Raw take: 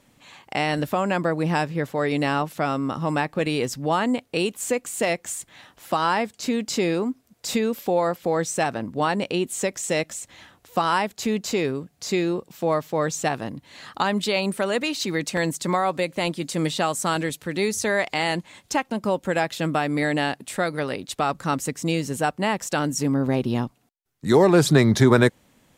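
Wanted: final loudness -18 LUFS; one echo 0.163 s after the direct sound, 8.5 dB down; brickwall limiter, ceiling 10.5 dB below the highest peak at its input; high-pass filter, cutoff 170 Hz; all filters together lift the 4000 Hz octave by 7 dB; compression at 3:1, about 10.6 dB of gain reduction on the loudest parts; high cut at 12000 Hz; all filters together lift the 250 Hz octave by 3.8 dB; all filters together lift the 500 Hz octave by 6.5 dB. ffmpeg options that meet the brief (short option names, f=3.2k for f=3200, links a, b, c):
-af "highpass=170,lowpass=12k,equalizer=f=250:t=o:g=3.5,equalizer=f=500:t=o:g=7,equalizer=f=4k:t=o:g=8.5,acompressor=threshold=-21dB:ratio=3,alimiter=limit=-17dB:level=0:latency=1,aecho=1:1:163:0.376,volume=9dB"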